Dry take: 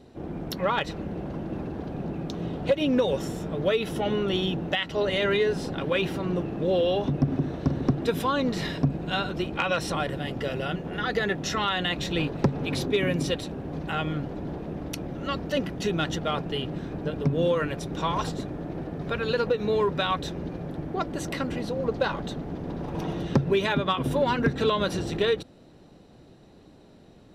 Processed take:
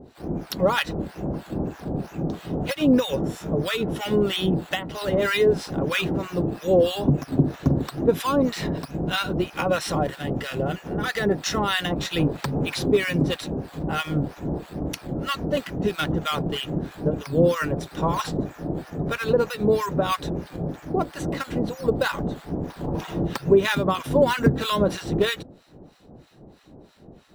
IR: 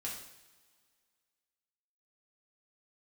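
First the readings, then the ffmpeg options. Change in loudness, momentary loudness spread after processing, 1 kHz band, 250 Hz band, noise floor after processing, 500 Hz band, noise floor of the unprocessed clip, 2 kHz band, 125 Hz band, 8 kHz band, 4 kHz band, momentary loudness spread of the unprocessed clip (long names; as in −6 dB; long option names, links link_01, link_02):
+3.0 dB, 10 LU, +2.0 dB, +4.0 dB, −48 dBFS, +3.0 dB, −52 dBFS, +2.5 dB, +3.0 dB, +4.5 dB, +2.0 dB, 10 LU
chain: -filter_complex "[0:a]asplit=2[link_01][link_02];[link_02]acrusher=samples=9:mix=1:aa=0.000001:lfo=1:lforange=5.4:lforate=2.2,volume=-9dB[link_03];[link_01][link_03]amix=inputs=2:normalize=0,acrossover=split=1000[link_04][link_05];[link_04]aeval=exprs='val(0)*(1-1/2+1/2*cos(2*PI*3.1*n/s))':channel_layout=same[link_06];[link_05]aeval=exprs='val(0)*(1-1/2-1/2*cos(2*PI*3.1*n/s))':channel_layout=same[link_07];[link_06][link_07]amix=inputs=2:normalize=0,volume=5.5dB"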